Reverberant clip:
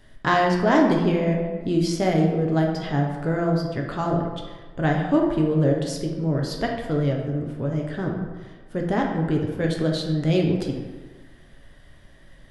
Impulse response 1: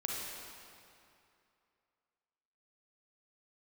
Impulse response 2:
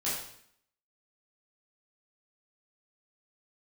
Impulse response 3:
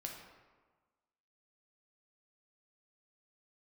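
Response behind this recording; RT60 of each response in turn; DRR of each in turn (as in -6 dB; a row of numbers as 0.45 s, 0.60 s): 3; 2.6 s, 0.65 s, 1.4 s; -3.0 dB, -9.5 dB, 0.0 dB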